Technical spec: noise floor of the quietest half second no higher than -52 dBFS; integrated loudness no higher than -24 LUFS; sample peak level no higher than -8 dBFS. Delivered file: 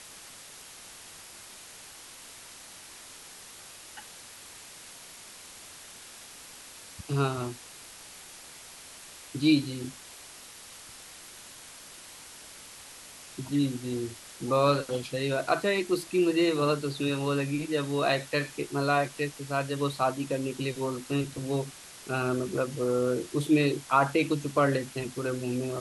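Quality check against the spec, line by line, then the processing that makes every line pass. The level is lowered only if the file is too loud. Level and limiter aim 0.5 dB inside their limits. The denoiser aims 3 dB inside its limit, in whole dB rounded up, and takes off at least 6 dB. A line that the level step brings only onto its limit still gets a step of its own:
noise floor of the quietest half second -48 dBFS: fail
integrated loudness -28.5 LUFS: OK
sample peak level -9.5 dBFS: OK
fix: denoiser 7 dB, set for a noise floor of -48 dBFS

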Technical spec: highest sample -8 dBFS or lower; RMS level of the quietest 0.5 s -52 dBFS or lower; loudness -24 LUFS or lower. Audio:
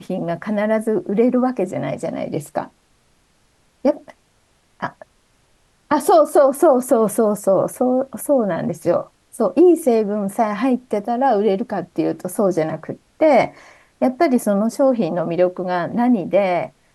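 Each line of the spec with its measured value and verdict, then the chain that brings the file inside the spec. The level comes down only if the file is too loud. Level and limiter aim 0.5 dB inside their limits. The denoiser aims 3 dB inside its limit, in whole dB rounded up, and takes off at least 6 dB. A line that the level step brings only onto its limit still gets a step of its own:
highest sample -4.0 dBFS: fail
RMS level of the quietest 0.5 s -60 dBFS: OK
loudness -18.5 LUFS: fail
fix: gain -6 dB

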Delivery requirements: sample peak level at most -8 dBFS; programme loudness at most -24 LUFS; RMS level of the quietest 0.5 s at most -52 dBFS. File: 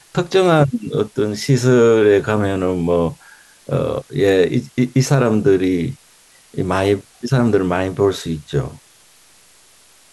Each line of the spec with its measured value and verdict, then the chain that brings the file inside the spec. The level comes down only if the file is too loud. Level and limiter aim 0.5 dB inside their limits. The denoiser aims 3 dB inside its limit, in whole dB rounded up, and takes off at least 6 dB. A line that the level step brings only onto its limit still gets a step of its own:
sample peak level -3.0 dBFS: fail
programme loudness -17.0 LUFS: fail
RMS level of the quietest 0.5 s -50 dBFS: fail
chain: gain -7.5 dB

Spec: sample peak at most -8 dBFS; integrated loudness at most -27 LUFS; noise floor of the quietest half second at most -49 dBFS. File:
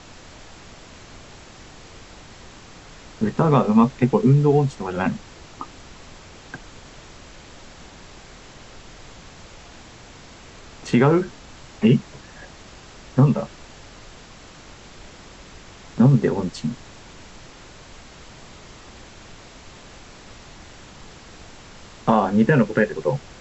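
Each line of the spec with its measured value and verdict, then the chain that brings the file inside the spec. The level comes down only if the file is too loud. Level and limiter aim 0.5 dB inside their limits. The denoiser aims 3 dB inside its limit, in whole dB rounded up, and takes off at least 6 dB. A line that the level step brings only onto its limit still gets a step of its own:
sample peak -5.0 dBFS: fail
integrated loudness -19.5 LUFS: fail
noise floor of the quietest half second -44 dBFS: fail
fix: gain -8 dB

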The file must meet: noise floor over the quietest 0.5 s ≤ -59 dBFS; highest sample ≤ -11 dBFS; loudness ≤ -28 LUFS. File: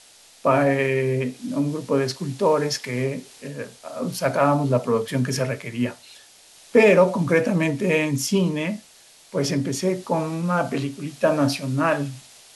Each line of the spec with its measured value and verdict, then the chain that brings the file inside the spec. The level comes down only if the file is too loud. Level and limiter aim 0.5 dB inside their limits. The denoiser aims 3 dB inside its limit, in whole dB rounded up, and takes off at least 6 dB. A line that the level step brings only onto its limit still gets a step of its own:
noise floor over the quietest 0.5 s -51 dBFS: fail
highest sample -5.5 dBFS: fail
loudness -22.5 LUFS: fail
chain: denoiser 6 dB, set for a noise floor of -51 dBFS; gain -6 dB

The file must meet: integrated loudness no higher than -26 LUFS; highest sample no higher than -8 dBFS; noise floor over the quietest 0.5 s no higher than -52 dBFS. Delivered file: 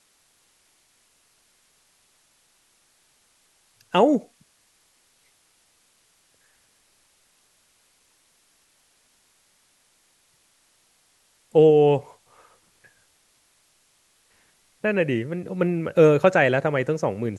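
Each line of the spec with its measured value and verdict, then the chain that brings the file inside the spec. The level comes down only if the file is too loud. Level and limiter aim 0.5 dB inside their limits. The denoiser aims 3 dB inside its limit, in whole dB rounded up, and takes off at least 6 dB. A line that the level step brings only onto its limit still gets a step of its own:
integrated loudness -20.5 LUFS: fail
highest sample -4.0 dBFS: fail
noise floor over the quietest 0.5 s -64 dBFS: OK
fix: gain -6 dB

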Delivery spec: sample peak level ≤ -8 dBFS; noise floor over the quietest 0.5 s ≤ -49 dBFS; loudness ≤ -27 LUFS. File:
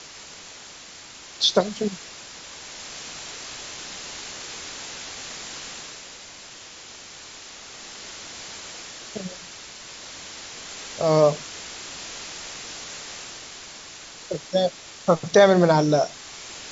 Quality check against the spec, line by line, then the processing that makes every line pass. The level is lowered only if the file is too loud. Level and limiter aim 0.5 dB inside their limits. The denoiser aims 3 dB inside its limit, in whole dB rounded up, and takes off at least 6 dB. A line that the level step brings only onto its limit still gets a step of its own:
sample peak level -4.0 dBFS: fail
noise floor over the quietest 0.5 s -43 dBFS: fail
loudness -25.5 LUFS: fail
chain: denoiser 7 dB, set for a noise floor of -43 dBFS; gain -2 dB; limiter -8.5 dBFS

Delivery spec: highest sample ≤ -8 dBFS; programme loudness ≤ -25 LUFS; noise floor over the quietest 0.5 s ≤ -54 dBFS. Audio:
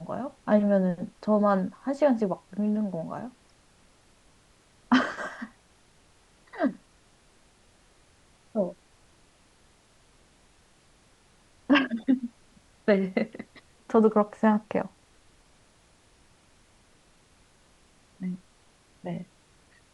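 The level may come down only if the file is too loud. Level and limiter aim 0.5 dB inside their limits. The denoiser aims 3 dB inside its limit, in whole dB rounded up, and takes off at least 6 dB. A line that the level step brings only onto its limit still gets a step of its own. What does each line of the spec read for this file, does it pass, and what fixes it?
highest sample -9.0 dBFS: OK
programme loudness -27.0 LUFS: OK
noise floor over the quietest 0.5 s -61 dBFS: OK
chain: none

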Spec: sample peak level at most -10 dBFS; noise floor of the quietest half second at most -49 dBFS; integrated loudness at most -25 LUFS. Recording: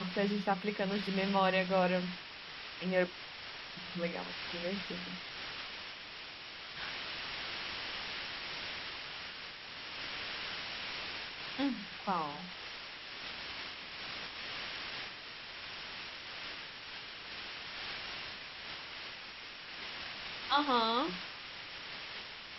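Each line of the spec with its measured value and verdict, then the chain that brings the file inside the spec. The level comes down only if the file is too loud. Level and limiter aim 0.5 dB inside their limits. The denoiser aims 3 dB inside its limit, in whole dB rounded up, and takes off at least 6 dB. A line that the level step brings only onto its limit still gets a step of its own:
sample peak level -16.0 dBFS: OK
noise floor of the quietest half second -48 dBFS: fail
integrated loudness -38.0 LUFS: OK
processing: denoiser 6 dB, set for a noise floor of -48 dBFS

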